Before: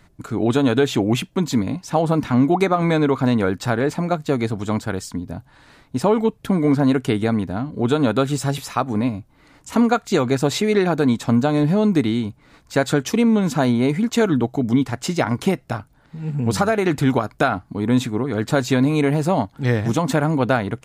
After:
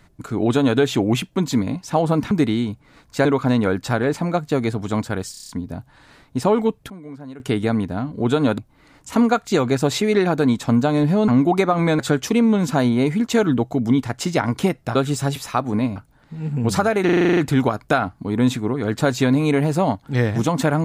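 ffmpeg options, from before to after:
-filter_complex "[0:a]asplit=24[s0][s1][s2][s3][s4][s5][s6][s7][s8][s9][s10][s11][s12][s13][s14][s15][s16][s17][s18][s19][s20][s21][s22][s23];[s0]atrim=end=2.312[s24];[s1]atrim=start=11.878:end=12.822[s25];[s2]atrim=start=3.018:end=5.112[s26];[s3]atrim=start=5.078:end=5.112[s27];[s4]atrim=start=5.078:end=5.112[s28];[s5]atrim=start=5.078:end=5.112[s29];[s6]atrim=start=5.078:end=5.112[s30];[s7]atrim=start=5.078:end=5.112[s31];[s8]atrim=start=5.078:end=6.49,asetpts=PTS-STARTPTS,afade=t=out:st=0.932:d=0.48:c=log:silence=0.105925[s32];[s9]atrim=start=6.49:end=6.99,asetpts=PTS-STARTPTS,volume=0.106[s33];[s10]atrim=start=6.99:end=8.172,asetpts=PTS-STARTPTS,afade=t=in:d=0.48:c=log:silence=0.105925[s34];[s11]atrim=start=9.178:end=11.882[s35];[s12]atrim=start=2.308:end=3.022[s36];[s13]atrim=start=12.818:end=15.782[s37];[s14]atrim=start=8.168:end=9.182[s38];[s15]atrim=start=15.778:end=16.912[s39];[s16]atrim=start=16.868:end=16.912[s40];[s17]atrim=start=16.868:end=16.912[s41];[s18]atrim=start=16.868:end=16.912[s42];[s19]atrim=start=16.868:end=16.912[s43];[s20]atrim=start=16.868:end=16.912[s44];[s21]atrim=start=16.868:end=16.912[s45];[s22]atrim=start=16.868:end=16.912[s46];[s23]atrim=start=16.868[s47];[s24][s25]acrossfade=d=0.004:c1=hsin:c2=hsin[s48];[s48][s26]acrossfade=d=0.004:c1=hsin:c2=hsin[s49];[s49][s27]acrossfade=d=0.004:c1=hsin:c2=hsin[s50];[s50][s28]acrossfade=d=0.004:c1=hsin:c2=hsin[s51];[s51][s29]acrossfade=d=0.004:c1=hsin:c2=hsin[s52];[s52][s30]acrossfade=d=0.004:c1=hsin:c2=hsin[s53];[s53][s31]acrossfade=d=0.004:c1=hsin:c2=hsin[s54];[s32][s33][s34]concat=n=3:v=0:a=1[s55];[s54][s55]acrossfade=d=0.004:c1=hsin:c2=hsin[s56];[s56][s35]acrossfade=d=0.004:c1=hsin:c2=hsin[s57];[s57][s36]acrossfade=d=0.004:c1=hsin:c2=hsin[s58];[s58][s37]acrossfade=d=0.004:c1=hsin:c2=hsin[s59];[s59][s38]acrossfade=d=0.004:c1=hsin:c2=hsin[s60];[s60][s39]acrossfade=d=0.004:c1=hsin:c2=hsin[s61];[s61][s40]acrossfade=d=0.004:c1=hsin:c2=hsin[s62];[s62][s41]acrossfade=d=0.004:c1=hsin:c2=hsin[s63];[s63][s42]acrossfade=d=0.004:c1=hsin:c2=hsin[s64];[s64][s43]acrossfade=d=0.004:c1=hsin:c2=hsin[s65];[s65][s44]acrossfade=d=0.004:c1=hsin:c2=hsin[s66];[s66][s45]acrossfade=d=0.004:c1=hsin:c2=hsin[s67];[s67][s46]acrossfade=d=0.004:c1=hsin:c2=hsin[s68];[s68][s47]acrossfade=d=0.004:c1=hsin:c2=hsin"

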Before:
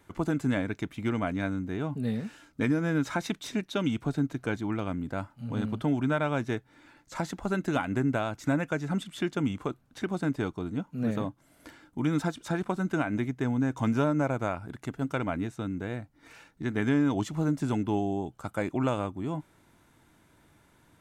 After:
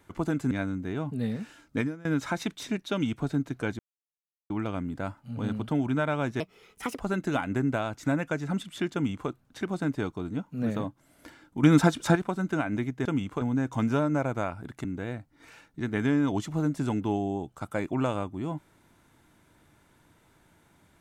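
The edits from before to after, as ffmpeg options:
-filter_complex "[0:a]asplit=11[s0][s1][s2][s3][s4][s5][s6][s7][s8][s9][s10];[s0]atrim=end=0.512[s11];[s1]atrim=start=1.348:end=2.89,asetpts=PTS-STARTPTS,afade=t=out:st=1.292:d=0.25:c=qua:silence=0.0944061[s12];[s2]atrim=start=2.89:end=4.63,asetpts=PTS-STARTPTS,afade=t=in:d=0.004:c=hsin:silence=0.0944061,afade=t=out:st=1.736:d=0.004:c=hsin,apad=pad_dur=0.71[s13];[s3]atrim=start=4.63:end=6.534,asetpts=PTS-STARTPTS,afade=t=in:d=0.004:c=hsin[s14];[s4]atrim=start=6.53:end=7.41,asetpts=PTS-STARTPTS,asetrate=64386,aresample=44100[s15];[s5]atrim=start=7.406:end=12.042[s16];[s6]atrim=start=12.038:end=12.562,asetpts=PTS-STARTPTS,volume=2.66[s17];[s7]atrim=start=12.558:end=13.462[s18];[s8]atrim=start=9.338:end=9.702[s19];[s9]atrim=start=13.458:end=14.892[s20];[s10]atrim=start=15.668[s21];[s12][s13][s14]concat=n=3:v=0:a=1[s22];[s11][s22]acrossfade=d=0.004:c1=hsin:c2=hsin[s23];[s23][s15]acrossfade=d=0.004:c1=hsin:c2=hsin[s24];[s24][s16]acrossfade=d=0.004:c1=hsin:c2=hsin[s25];[s25][s17]acrossfade=d=0.004:c1=hsin:c2=hsin[s26];[s26][s18]acrossfade=d=0.004:c1=hsin:c2=hsin[s27];[s27][s19]acrossfade=d=0.004:c1=hsin:c2=hsin[s28];[s28][s20]acrossfade=d=0.004:c1=hsin:c2=hsin[s29];[s29][s21]acrossfade=d=0.004:c1=hsin:c2=hsin"

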